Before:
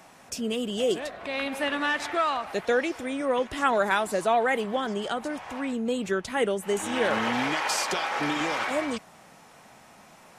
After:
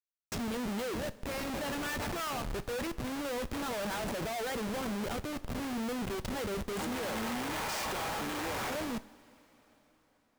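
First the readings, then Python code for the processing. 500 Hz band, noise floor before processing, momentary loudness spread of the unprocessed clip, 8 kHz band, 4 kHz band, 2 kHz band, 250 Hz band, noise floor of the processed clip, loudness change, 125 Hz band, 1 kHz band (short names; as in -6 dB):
-10.5 dB, -53 dBFS, 7 LU, -5.0 dB, -7.5 dB, -10.0 dB, -5.5 dB, -71 dBFS, -8.5 dB, +1.0 dB, -10.0 dB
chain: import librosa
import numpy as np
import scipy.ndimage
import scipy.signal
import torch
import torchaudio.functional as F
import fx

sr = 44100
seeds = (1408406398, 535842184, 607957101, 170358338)

y = fx.schmitt(x, sr, flips_db=-32.0)
y = fx.rev_double_slope(y, sr, seeds[0], early_s=0.36, late_s=4.6, knee_db=-18, drr_db=12.5)
y = y * 10.0 ** (-7.5 / 20.0)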